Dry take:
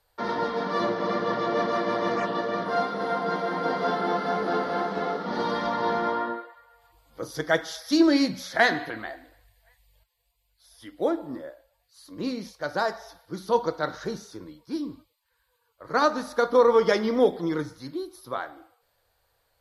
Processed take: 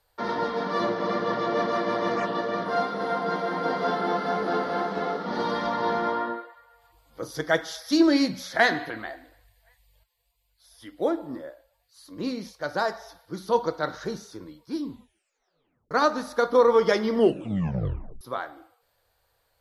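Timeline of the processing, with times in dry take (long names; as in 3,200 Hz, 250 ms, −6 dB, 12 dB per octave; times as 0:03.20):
0:14.83: tape stop 1.08 s
0:17.10: tape stop 1.11 s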